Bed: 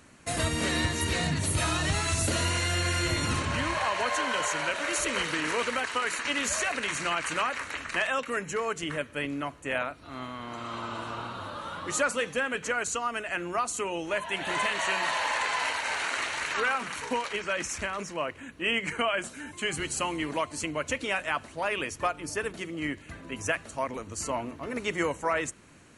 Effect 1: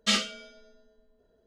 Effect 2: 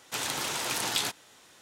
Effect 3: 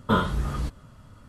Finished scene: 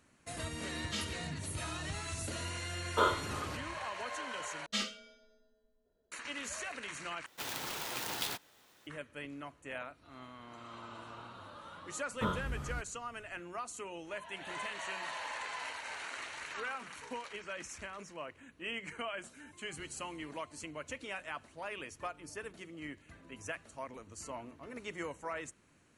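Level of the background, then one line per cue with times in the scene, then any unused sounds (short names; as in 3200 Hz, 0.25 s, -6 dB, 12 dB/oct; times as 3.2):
bed -12.5 dB
0.85 add 1 -15 dB
2.88 add 3 -4 dB + steep high-pass 320 Hz
4.66 replace with 1 -10.5 dB
7.26 replace with 2 -7.5 dB + clock jitter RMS 0.027 ms
12.12 add 3 -12 dB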